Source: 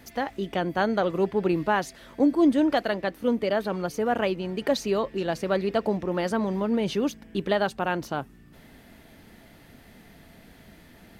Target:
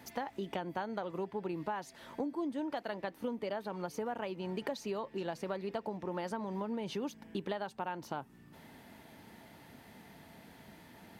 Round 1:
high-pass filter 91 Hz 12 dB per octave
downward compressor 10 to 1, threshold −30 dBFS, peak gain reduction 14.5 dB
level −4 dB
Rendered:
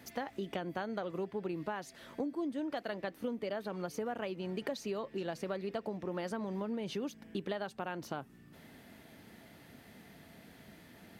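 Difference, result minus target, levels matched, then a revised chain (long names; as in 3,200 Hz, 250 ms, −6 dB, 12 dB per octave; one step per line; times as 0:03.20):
1,000 Hz band −3.0 dB
high-pass filter 91 Hz 12 dB per octave
parametric band 910 Hz +8.5 dB 0.34 octaves
downward compressor 10 to 1, threshold −30 dBFS, peak gain reduction 15 dB
level −4 dB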